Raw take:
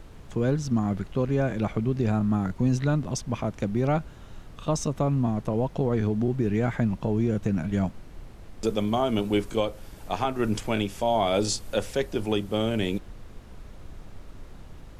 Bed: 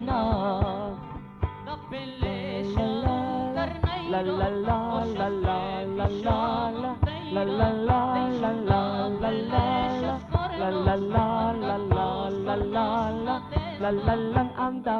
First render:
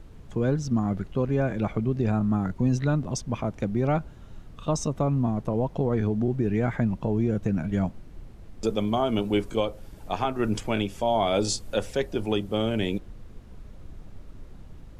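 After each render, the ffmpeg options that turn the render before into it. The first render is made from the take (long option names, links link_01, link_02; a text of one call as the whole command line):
ffmpeg -i in.wav -af "afftdn=noise_reduction=6:noise_floor=-46" out.wav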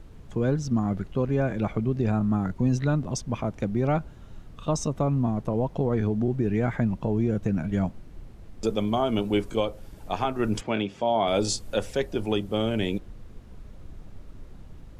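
ffmpeg -i in.wav -filter_complex "[0:a]asettb=1/sr,asplit=3[link_01][link_02][link_03];[link_01]atrim=end=10.614[link_04];[link_02]atrim=start=10.61:end=11.28,asetpts=PTS-STARTPTS,afade=type=in:duration=0.004:curve=qsin,afade=type=out:start_time=0.666:duration=0.004:curve=qsin,highpass=130,lowpass=4400[link_05];[link_03]atrim=start=11.276[link_06];[link_04][link_05]acrossfade=duration=0.004:curve1=hsin:curve2=qsin[link_07];[link_07][link_06]acrossfade=duration=0.004:curve1=qsin:curve2=hsin" out.wav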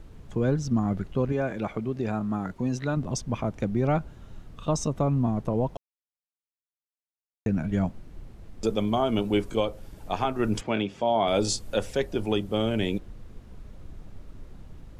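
ffmpeg -i in.wav -filter_complex "[0:a]asettb=1/sr,asplit=3[link_01][link_02][link_03];[link_01]atrim=end=1.324[link_04];[link_02]atrim=start=1.32:end=2.97,asetpts=PTS-STARTPTS,afade=type=in:duration=0.004:curve=qsin,afade=type=out:start_time=1.646:duration=0.004:curve=qsin,lowshelf=frequency=160:gain=-12[link_05];[link_03]atrim=start=2.966[link_06];[link_04][link_05]acrossfade=duration=0.004:curve1=hsin:curve2=qsin[link_07];[link_07][link_06]acrossfade=duration=0.004:curve1=qsin:curve2=hsin,asplit=3[link_08][link_09][link_10];[link_08]atrim=end=5.77,asetpts=PTS-STARTPTS,afade=type=out:start_time=5.766:duration=0.004:curve=hsin[link_11];[link_09]atrim=start=5.77:end=7.46,asetpts=PTS-STARTPTS,volume=0[link_12];[link_10]atrim=start=7.46,asetpts=PTS-STARTPTS,afade=type=in:duration=0.004:curve=hsin[link_13];[link_11][link_12][link_13]concat=n=3:v=0:a=1" out.wav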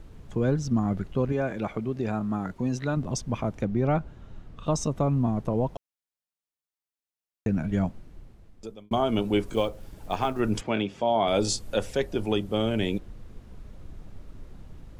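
ffmpeg -i in.wav -filter_complex "[0:a]asettb=1/sr,asplit=3[link_01][link_02][link_03];[link_01]atrim=end=3.624[link_04];[link_02]atrim=start=3.62:end=4.66,asetpts=PTS-STARTPTS,afade=type=in:duration=0.004:curve=qsin,afade=type=out:start_time=1.036:duration=0.004:curve=qsin,lowpass=frequency=3500:poles=1[link_05];[link_03]atrim=start=4.656[link_06];[link_04][link_05]acrossfade=duration=0.004:curve1=hsin:curve2=qsin[link_07];[link_07][link_06]acrossfade=duration=0.004:curve1=qsin:curve2=hsin,asettb=1/sr,asplit=3[link_08][link_09][link_10];[link_08]atrim=end=9.464[link_11];[link_09]atrim=start=9.46:end=10.4,asetpts=PTS-STARTPTS,afade=type=in:duration=0.004:curve=qsin,afade=type=out:start_time=0.936:duration=0.004:curve=qsin,acrusher=bits=8:mode=log:mix=0:aa=0.000001[link_12];[link_10]atrim=start=10.396[link_13];[link_11][link_12]acrossfade=duration=0.004:curve1=hsin:curve2=qsin[link_14];[link_14][link_13]acrossfade=duration=0.004:curve1=qsin:curve2=hsin,asplit=2[link_15][link_16];[link_15]atrim=end=8.91,asetpts=PTS-STARTPTS,afade=type=out:start_time=7.81:duration=1.1[link_17];[link_16]atrim=start=8.91,asetpts=PTS-STARTPTS,afade=type=in:duration=0.004:curve=hsin[link_18];[link_17][link_18]concat=n=2:v=0:a=1" out.wav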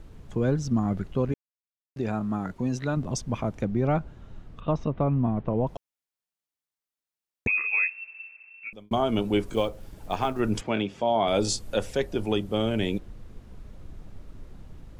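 ffmpeg -i in.wav -filter_complex "[0:a]asettb=1/sr,asplit=3[link_01][link_02][link_03];[link_01]atrim=end=4.604[link_04];[link_02]atrim=start=4.6:end=5.67,asetpts=PTS-STARTPTS,afade=type=in:duration=0.004:curve=qsin,afade=type=out:start_time=1.066:duration=0.004:curve=qsin,lowpass=frequency=3100:width=0.5412,lowpass=frequency=3100:width=1.3066[link_05];[link_03]atrim=start=5.666[link_06];[link_04][link_05]acrossfade=duration=0.004:curve1=hsin:curve2=qsin[link_07];[link_07][link_06]acrossfade=duration=0.004:curve1=qsin:curve2=hsin,asettb=1/sr,asplit=3[link_08][link_09][link_10];[link_08]atrim=end=7.474[link_11];[link_09]atrim=start=7.47:end=8.73,asetpts=PTS-STARTPTS,afade=type=in:duration=0.004:curve=qsin,afade=type=out:start_time=1.256:duration=0.004:curve=qsin,lowpass=frequency=2300:width_type=q:width=0.5098,lowpass=frequency=2300:width_type=q:width=0.6013,lowpass=frequency=2300:width_type=q:width=0.9,lowpass=frequency=2300:width_type=q:width=2.563,afreqshift=-2700[link_12];[link_10]atrim=start=8.726[link_13];[link_11][link_12]acrossfade=duration=0.004:curve1=hsin:curve2=qsin[link_14];[link_14][link_13]acrossfade=duration=0.004:curve1=qsin:curve2=hsin,asplit=3[link_15][link_16][link_17];[link_15]atrim=end=1.34,asetpts=PTS-STARTPTS,afade=type=out:start_time=1.336:duration=0.004:curve=hsin[link_18];[link_16]atrim=start=1.34:end=1.96,asetpts=PTS-STARTPTS,volume=0[link_19];[link_17]atrim=start=1.96,asetpts=PTS-STARTPTS,afade=type=in:duration=0.004:curve=hsin[link_20];[link_18][link_19][link_20]concat=n=3:v=0:a=1" out.wav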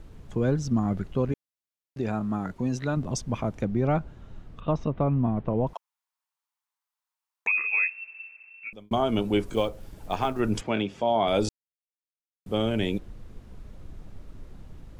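ffmpeg -i in.wav -filter_complex "[0:a]asettb=1/sr,asplit=3[link_01][link_02][link_03];[link_01]atrim=end=5.734[link_04];[link_02]atrim=start=5.73:end=7.52,asetpts=PTS-STARTPTS,afade=type=in:duration=0.004:curve=qsin,afade=type=out:start_time=1.786:duration=0.004:curve=qsin,highpass=frequency=960:width_type=q:width=3.5[link_05];[link_03]atrim=start=7.516[link_06];[link_04][link_05]acrossfade=duration=0.004:curve1=hsin:curve2=qsin[link_07];[link_07][link_06]acrossfade=duration=0.004:curve1=qsin:curve2=hsin,asplit=3[link_08][link_09][link_10];[link_08]atrim=end=11.49,asetpts=PTS-STARTPTS,afade=type=out:start_time=11.486:duration=0.004:curve=hsin[link_11];[link_09]atrim=start=11.49:end=12.46,asetpts=PTS-STARTPTS,volume=0[link_12];[link_10]atrim=start=12.46,asetpts=PTS-STARTPTS,afade=type=in:duration=0.004:curve=hsin[link_13];[link_11][link_12][link_13]concat=n=3:v=0:a=1" out.wav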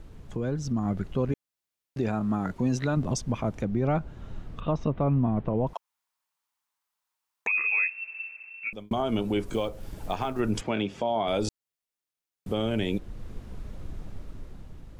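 ffmpeg -i in.wav -af "alimiter=limit=-22dB:level=0:latency=1:release=312,dynaudnorm=framelen=130:gausssize=13:maxgain=5dB" out.wav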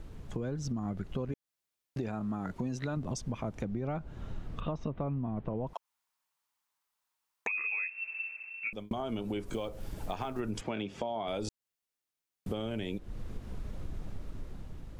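ffmpeg -i in.wav -af "acompressor=threshold=-32dB:ratio=6" out.wav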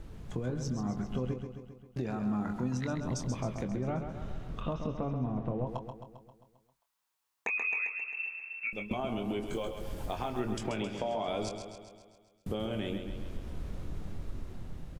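ffmpeg -i in.wav -filter_complex "[0:a]asplit=2[link_01][link_02];[link_02]adelay=24,volume=-9dB[link_03];[link_01][link_03]amix=inputs=2:normalize=0,asplit=2[link_04][link_05];[link_05]aecho=0:1:133|266|399|532|665|798|931|1064:0.422|0.249|0.147|0.0866|0.0511|0.0301|0.0178|0.0105[link_06];[link_04][link_06]amix=inputs=2:normalize=0" out.wav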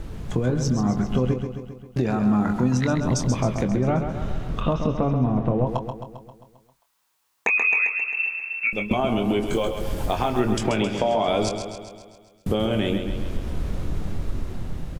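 ffmpeg -i in.wav -af "volume=12dB" out.wav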